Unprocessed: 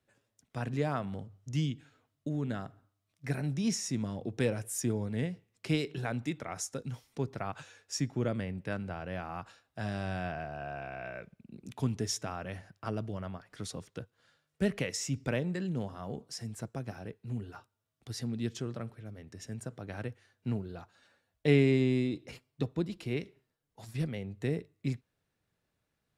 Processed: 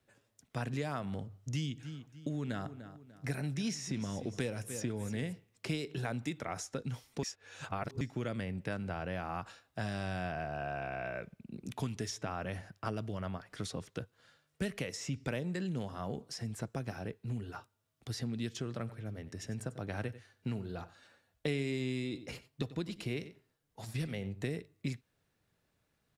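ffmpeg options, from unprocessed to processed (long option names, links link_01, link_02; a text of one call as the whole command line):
ffmpeg -i in.wav -filter_complex "[0:a]asettb=1/sr,asplit=3[link_01][link_02][link_03];[link_01]atrim=end=1.344[link_04];[link_02]atrim=start=1.34:end=5.33,asetpts=PTS-STARTPTS,afade=type=in:duration=0.004:curve=qsin,afade=type=out:start_time=3.986:duration=0.004:curve=qsin,aecho=1:1:296|592|888:0.141|0.0509|0.0183,atrim=end_sample=175959[link_05];[link_03]atrim=start=5.326[link_06];[link_04][link_05]acrossfade=duration=0.004:curve1=hsin:curve2=qsin[link_07];[link_07][link_06]acrossfade=duration=0.004:curve1=qsin:curve2=hsin,asplit=3[link_08][link_09][link_10];[link_08]afade=type=out:start_time=18.87:duration=0.02[link_11];[link_09]aecho=1:1:93:0.141,afade=type=in:start_time=18.87:duration=0.02,afade=type=out:start_time=24.55:duration=0.02[link_12];[link_10]afade=type=in:start_time=24.55:duration=0.02[link_13];[link_11][link_12][link_13]amix=inputs=3:normalize=0,asplit=3[link_14][link_15][link_16];[link_14]atrim=end=7.232[link_17];[link_15]atrim=start=7.228:end=8.012,asetpts=PTS-STARTPTS,areverse[link_18];[link_16]atrim=start=8.008[link_19];[link_17][link_18]acrossfade=duration=0.004:curve1=hsin:curve2=hsin[link_20];[link_20][link_19]acrossfade=duration=0.004:curve1=hsin:curve2=hsin,acrossover=split=1400|4600[link_21][link_22][link_23];[link_21]acompressor=threshold=-38dB:ratio=4[link_24];[link_22]acompressor=threshold=-48dB:ratio=4[link_25];[link_23]acompressor=threshold=-52dB:ratio=4[link_26];[link_24][link_25][link_26]amix=inputs=3:normalize=0,volume=3.5dB" out.wav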